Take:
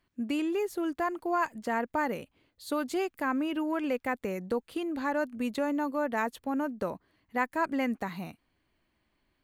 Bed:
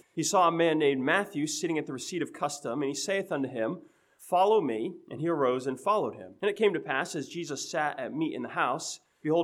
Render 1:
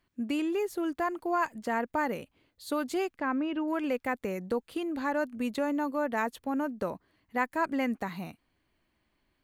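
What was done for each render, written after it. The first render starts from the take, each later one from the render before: 3.16–3.68 s: distance through air 160 m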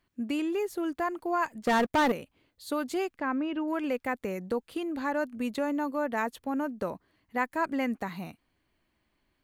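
1.67–2.12 s: waveshaping leveller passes 3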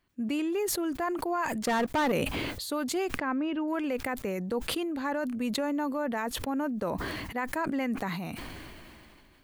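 peak limiter -22 dBFS, peak gain reduction 7 dB; decay stretcher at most 22 dB/s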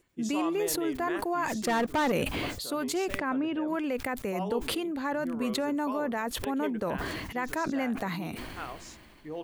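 add bed -12.5 dB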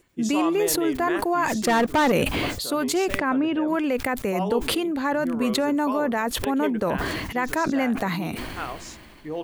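trim +7 dB

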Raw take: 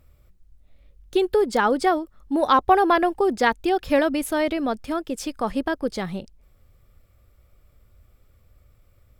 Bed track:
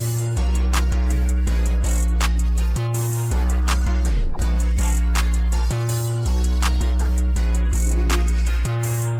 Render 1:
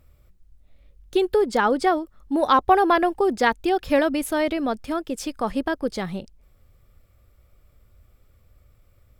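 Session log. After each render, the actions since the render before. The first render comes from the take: 1.38–1.98 s: treble shelf 9 kHz -4.5 dB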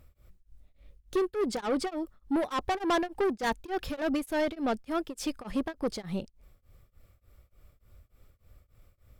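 saturation -22.5 dBFS, distortion -7 dB; tremolo of two beating tones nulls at 3.4 Hz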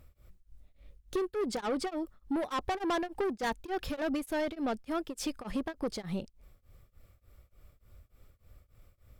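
compression 2.5:1, threshold -31 dBFS, peak gain reduction 5 dB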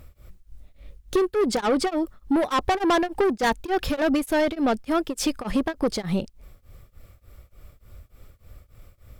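trim +10.5 dB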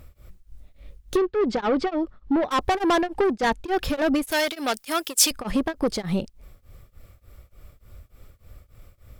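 1.17–2.51 s: distance through air 170 m; 3.01–3.68 s: treble shelf 9.5 kHz -12 dB; 4.31–5.31 s: tilt EQ +4.5 dB/octave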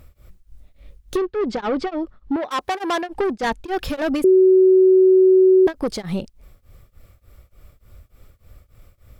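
2.36–3.09 s: high-pass 430 Hz 6 dB/octave; 4.24–5.67 s: bleep 375 Hz -9 dBFS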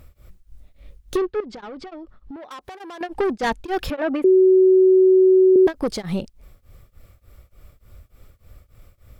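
1.40–3.01 s: compression 12:1, threshold -34 dBFS; 3.90–5.56 s: three-band isolator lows -20 dB, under 220 Hz, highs -22 dB, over 2.8 kHz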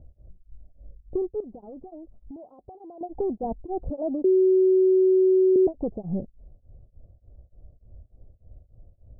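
elliptic low-pass 720 Hz, stop band 60 dB; peaking EQ 410 Hz -5 dB 2.7 oct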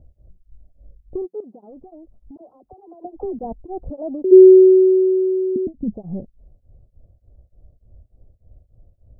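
1.25–1.70 s: brick-wall FIR high-pass 170 Hz; 2.37–3.39 s: phase dispersion lows, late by 47 ms, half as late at 490 Hz; 4.31–5.93 s: resonant low-pass 380 Hz -> 210 Hz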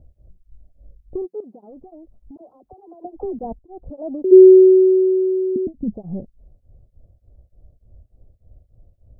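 3.59–4.14 s: fade in linear, from -19 dB

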